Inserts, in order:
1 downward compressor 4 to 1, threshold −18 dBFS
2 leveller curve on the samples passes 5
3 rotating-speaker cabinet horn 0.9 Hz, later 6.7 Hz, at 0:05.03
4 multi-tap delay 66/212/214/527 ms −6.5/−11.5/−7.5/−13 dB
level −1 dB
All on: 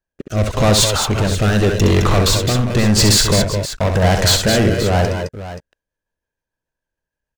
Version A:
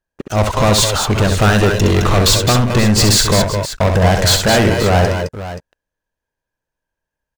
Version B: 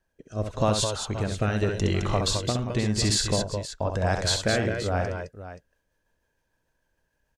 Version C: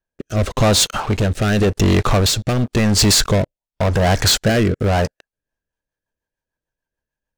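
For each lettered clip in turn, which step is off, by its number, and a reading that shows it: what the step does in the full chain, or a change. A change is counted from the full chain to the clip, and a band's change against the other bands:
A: 3, 1 kHz band +3.0 dB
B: 2, change in crest factor +3.0 dB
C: 4, echo-to-direct ratio −3.0 dB to none audible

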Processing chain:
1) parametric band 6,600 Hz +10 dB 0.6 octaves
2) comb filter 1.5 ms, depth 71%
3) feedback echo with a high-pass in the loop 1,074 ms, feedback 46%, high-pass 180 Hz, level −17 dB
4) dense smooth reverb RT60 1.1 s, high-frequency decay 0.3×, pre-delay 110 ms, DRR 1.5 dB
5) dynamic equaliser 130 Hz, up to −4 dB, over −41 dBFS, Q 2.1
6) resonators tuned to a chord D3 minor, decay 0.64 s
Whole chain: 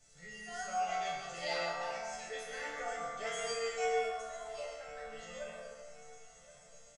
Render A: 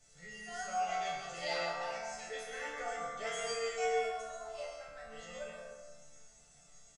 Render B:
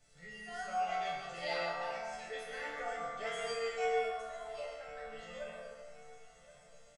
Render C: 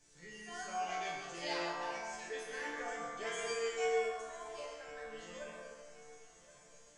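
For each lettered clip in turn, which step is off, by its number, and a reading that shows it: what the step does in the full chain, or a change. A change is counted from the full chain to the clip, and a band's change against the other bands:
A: 3, change in momentary loudness spread −4 LU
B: 1, 8 kHz band −8.0 dB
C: 2, 250 Hz band +6.5 dB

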